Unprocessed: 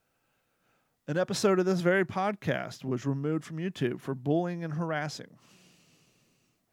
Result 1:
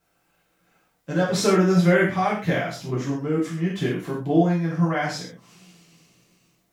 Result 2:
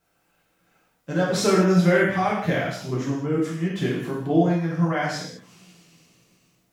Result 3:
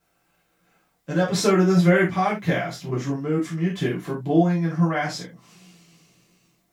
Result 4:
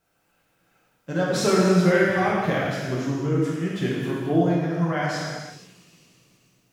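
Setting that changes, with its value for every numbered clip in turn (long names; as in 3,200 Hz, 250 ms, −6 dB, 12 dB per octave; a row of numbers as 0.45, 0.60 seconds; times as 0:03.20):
reverb whose tail is shaped and stops, gate: 160, 240, 100, 530 milliseconds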